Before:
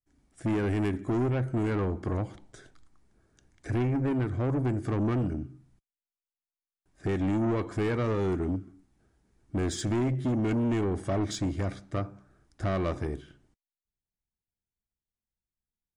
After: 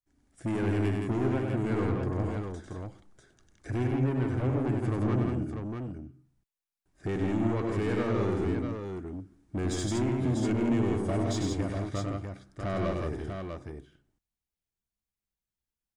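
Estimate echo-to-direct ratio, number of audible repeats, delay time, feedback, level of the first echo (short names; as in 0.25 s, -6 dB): 0.0 dB, 3, 98 ms, no steady repeat, -4.5 dB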